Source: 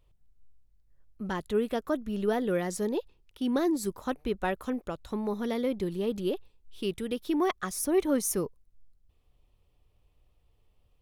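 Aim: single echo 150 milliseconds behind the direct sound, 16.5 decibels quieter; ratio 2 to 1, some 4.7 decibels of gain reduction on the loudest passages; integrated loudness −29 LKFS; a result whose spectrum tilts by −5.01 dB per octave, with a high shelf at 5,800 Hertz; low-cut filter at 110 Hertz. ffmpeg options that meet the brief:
ffmpeg -i in.wav -af "highpass=110,highshelf=frequency=5800:gain=-5,acompressor=threshold=-30dB:ratio=2,aecho=1:1:150:0.15,volume=5dB" out.wav

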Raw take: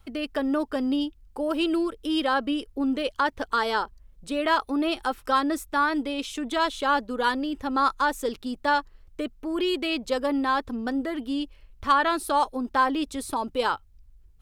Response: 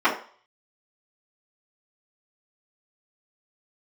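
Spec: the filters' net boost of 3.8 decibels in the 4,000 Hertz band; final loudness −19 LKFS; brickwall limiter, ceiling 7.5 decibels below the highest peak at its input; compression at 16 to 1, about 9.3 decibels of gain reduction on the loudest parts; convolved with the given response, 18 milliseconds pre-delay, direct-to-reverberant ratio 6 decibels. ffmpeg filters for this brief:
-filter_complex "[0:a]equalizer=frequency=4000:width_type=o:gain=5,acompressor=threshold=-25dB:ratio=16,alimiter=limit=-21.5dB:level=0:latency=1,asplit=2[link_01][link_02];[1:a]atrim=start_sample=2205,adelay=18[link_03];[link_02][link_03]afir=irnorm=-1:irlink=0,volume=-25.5dB[link_04];[link_01][link_04]amix=inputs=2:normalize=0,volume=12dB"

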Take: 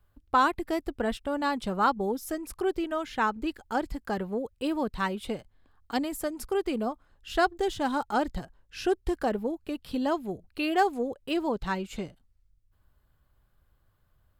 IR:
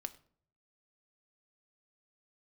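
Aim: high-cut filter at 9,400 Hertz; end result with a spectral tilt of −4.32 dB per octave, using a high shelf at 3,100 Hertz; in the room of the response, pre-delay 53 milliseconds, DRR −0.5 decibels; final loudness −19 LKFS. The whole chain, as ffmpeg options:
-filter_complex "[0:a]lowpass=9400,highshelf=frequency=3100:gain=-8.5,asplit=2[link_01][link_02];[1:a]atrim=start_sample=2205,adelay=53[link_03];[link_02][link_03]afir=irnorm=-1:irlink=0,volume=3dB[link_04];[link_01][link_04]amix=inputs=2:normalize=0,volume=8.5dB"

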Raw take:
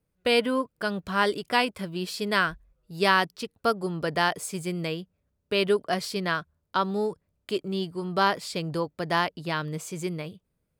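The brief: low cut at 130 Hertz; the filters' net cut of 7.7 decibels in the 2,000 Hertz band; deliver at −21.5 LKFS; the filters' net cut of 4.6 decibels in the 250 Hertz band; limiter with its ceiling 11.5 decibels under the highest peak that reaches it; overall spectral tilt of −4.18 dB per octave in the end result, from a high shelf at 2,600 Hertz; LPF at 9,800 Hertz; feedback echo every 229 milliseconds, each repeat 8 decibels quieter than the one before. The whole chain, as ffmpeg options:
ffmpeg -i in.wav -af "highpass=130,lowpass=9800,equalizer=frequency=250:width_type=o:gain=-6,equalizer=frequency=2000:width_type=o:gain=-8.5,highshelf=frequency=2600:gain=-4.5,alimiter=limit=-23dB:level=0:latency=1,aecho=1:1:229|458|687|916|1145:0.398|0.159|0.0637|0.0255|0.0102,volume=13dB" out.wav

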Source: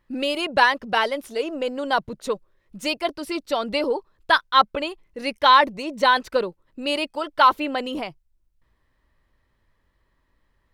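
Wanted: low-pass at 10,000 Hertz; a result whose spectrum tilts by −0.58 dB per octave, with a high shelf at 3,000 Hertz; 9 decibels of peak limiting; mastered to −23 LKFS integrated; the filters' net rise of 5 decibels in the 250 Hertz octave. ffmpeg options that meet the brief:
ffmpeg -i in.wav -af "lowpass=10000,equalizer=frequency=250:width_type=o:gain=6,highshelf=frequency=3000:gain=7,volume=0.5dB,alimiter=limit=-9.5dB:level=0:latency=1" out.wav

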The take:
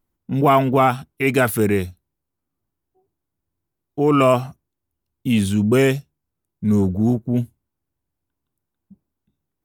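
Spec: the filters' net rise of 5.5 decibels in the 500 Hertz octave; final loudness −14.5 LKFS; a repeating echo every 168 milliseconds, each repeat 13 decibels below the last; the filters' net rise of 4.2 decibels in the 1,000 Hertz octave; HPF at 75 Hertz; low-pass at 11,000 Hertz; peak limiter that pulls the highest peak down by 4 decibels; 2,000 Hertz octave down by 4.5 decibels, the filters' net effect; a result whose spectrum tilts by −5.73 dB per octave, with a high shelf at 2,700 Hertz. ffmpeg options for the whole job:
ffmpeg -i in.wav -af "highpass=75,lowpass=11000,equalizer=frequency=500:width_type=o:gain=6.5,equalizer=frequency=1000:width_type=o:gain=5.5,equalizer=frequency=2000:width_type=o:gain=-5,highshelf=frequency=2700:gain=-8,alimiter=limit=-4dB:level=0:latency=1,aecho=1:1:168|336|504:0.224|0.0493|0.0108,volume=2dB" out.wav

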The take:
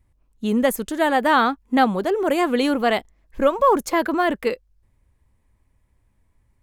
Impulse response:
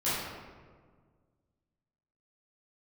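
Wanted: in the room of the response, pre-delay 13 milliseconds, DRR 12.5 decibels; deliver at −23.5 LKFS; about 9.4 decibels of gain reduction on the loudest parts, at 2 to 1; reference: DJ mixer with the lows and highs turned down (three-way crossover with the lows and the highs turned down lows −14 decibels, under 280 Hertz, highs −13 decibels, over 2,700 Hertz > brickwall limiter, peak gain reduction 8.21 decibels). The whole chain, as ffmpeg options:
-filter_complex "[0:a]acompressor=threshold=-29dB:ratio=2,asplit=2[link_01][link_02];[1:a]atrim=start_sample=2205,adelay=13[link_03];[link_02][link_03]afir=irnorm=-1:irlink=0,volume=-22.5dB[link_04];[link_01][link_04]amix=inputs=2:normalize=0,acrossover=split=280 2700:gain=0.2 1 0.224[link_05][link_06][link_07];[link_05][link_06][link_07]amix=inputs=3:normalize=0,volume=9.5dB,alimiter=limit=-13dB:level=0:latency=1"

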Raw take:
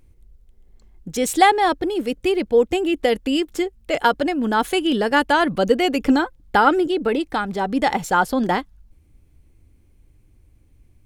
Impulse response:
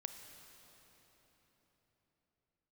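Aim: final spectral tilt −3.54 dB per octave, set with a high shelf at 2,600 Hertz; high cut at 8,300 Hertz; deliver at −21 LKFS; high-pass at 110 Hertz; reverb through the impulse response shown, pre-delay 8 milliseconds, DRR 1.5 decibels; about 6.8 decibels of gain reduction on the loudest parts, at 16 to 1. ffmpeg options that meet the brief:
-filter_complex "[0:a]highpass=110,lowpass=8300,highshelf=frequency=2600:gain=3.5,acompressor=threshold=-16dB:ratio=16,asplit=2[link_01][link_02];[1:a]atrim=start_sample=2205,adelay=8[link_03];[link_02][link_03]afir=irnorm=-1:irlink=0,volume=1.5dB[link_04];[link_01][link_04]amix=inputs=2:normalize=0,volume=-1dB"

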